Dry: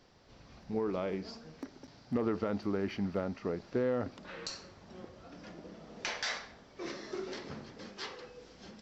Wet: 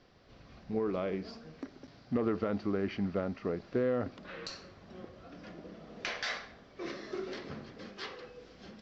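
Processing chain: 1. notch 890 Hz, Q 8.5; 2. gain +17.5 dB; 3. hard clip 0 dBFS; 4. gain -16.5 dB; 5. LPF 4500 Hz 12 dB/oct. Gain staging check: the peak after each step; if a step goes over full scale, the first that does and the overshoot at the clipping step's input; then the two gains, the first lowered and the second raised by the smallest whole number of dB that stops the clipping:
-21.0, -3.5, -3.5, -20.0, -20.0 dBFS; no overload

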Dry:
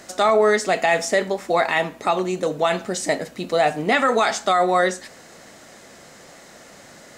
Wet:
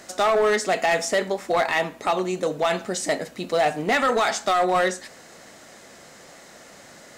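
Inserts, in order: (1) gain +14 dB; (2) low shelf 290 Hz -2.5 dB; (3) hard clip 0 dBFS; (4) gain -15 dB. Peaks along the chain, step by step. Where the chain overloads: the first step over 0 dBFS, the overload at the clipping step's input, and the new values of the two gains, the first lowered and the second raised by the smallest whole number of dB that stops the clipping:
+7.0, +7.0, 0.0, -15.0 dBFS; step 1, 7.0 dB; step 1 +7 dB, step 4 -8 dB

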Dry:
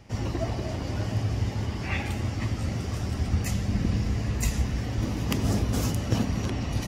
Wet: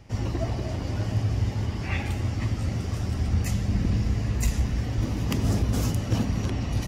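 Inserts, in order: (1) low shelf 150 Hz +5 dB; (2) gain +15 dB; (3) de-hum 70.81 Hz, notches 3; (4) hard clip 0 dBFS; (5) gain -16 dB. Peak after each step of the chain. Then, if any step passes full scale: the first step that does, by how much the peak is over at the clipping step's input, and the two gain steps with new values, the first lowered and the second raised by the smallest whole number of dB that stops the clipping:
-9.5, +5.5, +5.0, 0.0, -16.0 dBFS; step 2, 5.0 dB; step 2 +10 dB, step 5 -11 dB

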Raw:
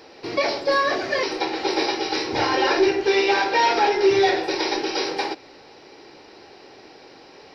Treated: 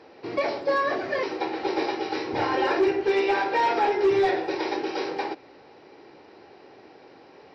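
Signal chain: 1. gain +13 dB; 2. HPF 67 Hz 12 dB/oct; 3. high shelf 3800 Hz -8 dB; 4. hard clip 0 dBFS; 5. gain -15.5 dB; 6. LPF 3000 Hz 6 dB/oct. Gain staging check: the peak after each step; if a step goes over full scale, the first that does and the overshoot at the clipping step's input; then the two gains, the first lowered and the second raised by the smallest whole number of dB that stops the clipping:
+6.5, +6.0, +5.5, 0.0, -15.5, -15.5 dBFS; step 1, 5.5 dB; step 1 +7 dB, step 5 -9.5 dB

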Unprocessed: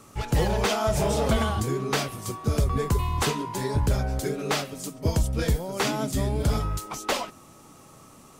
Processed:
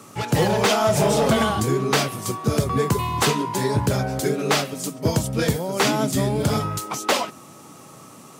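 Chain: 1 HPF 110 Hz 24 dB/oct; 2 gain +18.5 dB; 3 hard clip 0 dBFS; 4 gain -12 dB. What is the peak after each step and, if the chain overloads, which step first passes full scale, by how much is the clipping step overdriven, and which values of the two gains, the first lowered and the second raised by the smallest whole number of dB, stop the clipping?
-11.5, +7.0, 0.0, -12.0 dBFS; step 2, 7.0 dB; step 2 +11.5 dB, step 4 -5 dB

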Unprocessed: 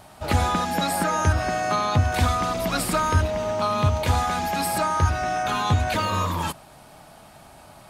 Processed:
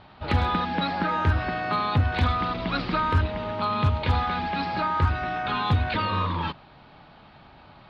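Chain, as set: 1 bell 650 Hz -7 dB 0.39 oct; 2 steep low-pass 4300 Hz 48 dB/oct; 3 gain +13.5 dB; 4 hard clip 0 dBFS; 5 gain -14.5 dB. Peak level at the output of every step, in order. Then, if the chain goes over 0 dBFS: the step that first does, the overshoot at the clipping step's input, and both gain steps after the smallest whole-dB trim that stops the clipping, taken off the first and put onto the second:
-9.0, -9.0, +4.5, 0.0, -14.5 dBFS; step 3, 4.5 dB; step 3 +8.5 dB, step 5 -9.5 dB

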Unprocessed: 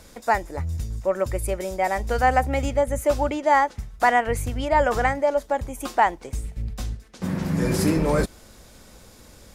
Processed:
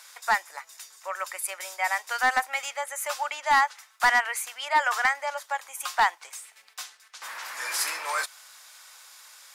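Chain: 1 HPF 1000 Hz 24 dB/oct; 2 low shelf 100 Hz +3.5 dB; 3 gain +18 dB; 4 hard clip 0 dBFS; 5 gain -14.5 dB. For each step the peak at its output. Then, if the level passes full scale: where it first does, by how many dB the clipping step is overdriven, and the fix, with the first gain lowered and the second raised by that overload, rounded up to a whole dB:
-11.0, -11.0, +7.0, 0.0, -14.5 dBFS; step 3, 7.0 dB; step 3 +11 dB, step 5 -7.5 dB

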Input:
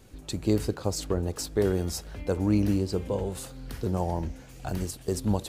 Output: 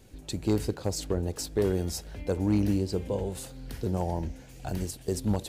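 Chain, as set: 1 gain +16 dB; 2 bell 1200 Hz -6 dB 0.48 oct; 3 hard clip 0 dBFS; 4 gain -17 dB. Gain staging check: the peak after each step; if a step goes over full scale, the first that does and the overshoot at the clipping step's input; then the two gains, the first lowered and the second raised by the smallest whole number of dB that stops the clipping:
+4.0, +4.0, 0.0, -17.0 dBFS; step 1, 4.0 dB; step 1 +12 dB, step 4 -13 dB

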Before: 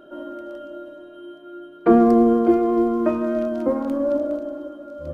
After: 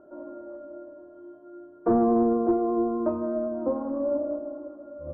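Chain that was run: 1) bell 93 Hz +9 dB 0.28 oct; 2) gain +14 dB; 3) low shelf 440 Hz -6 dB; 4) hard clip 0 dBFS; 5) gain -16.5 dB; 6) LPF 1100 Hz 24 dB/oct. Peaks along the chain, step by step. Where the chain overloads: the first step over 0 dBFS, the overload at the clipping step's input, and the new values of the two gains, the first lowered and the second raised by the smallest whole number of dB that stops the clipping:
-3.5, +10.5, +8.0, 0.0, -16.5, -15.0 dBFS; step 2, 8.0 dB; step 2 +6 dB, step 5 -8.5 dB

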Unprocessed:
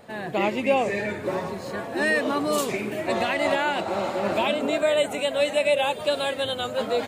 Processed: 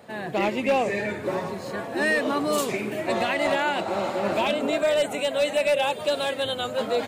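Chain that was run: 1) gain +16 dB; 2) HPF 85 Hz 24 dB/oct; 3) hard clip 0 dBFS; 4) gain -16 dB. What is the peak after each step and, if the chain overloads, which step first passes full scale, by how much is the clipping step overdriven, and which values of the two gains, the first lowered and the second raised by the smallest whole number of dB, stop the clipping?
+5.5, +6.5, 0.0, -16.0 dBFS; step 1, 6.5 dB; step 1 +9 dB, step 4 -9 dB

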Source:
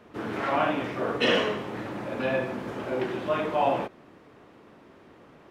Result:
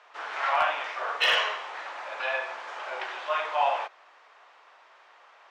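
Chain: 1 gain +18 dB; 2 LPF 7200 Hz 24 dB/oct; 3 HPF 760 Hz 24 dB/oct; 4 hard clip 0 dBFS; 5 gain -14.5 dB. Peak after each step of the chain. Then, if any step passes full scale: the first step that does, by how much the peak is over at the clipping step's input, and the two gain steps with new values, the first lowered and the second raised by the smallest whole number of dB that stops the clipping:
+7.5, +7.5, +4.0, 0.0, -14.5 dBFS; step 1, 4.0 dB; step 1 +14 dB, step 5 -10.5 dB

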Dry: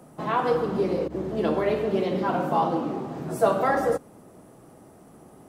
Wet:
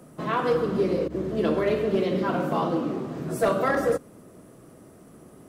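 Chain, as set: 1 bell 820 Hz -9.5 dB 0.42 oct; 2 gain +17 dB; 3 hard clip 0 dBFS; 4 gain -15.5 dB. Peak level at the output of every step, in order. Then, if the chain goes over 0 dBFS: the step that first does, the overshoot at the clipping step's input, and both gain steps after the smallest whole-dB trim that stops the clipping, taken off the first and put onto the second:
-11.0, +6.0, 0.0, -15.5 dBFS; step 2, 6.0 dB; step 2 +11 dB, step 4 -9.5 dB

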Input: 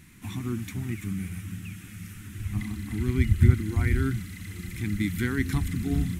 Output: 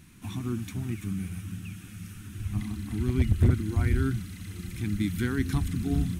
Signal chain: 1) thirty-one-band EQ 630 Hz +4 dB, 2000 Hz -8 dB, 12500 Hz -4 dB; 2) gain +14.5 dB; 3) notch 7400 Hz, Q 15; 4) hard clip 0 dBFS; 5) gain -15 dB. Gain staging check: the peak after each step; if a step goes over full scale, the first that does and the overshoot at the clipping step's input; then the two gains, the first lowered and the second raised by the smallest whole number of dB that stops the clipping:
-6.5, +8.0, +8.0, 0.0, -15.0 dBFS; step 2, 8.0 dB; step 2 +6.5 dB, step 5 -7 dB

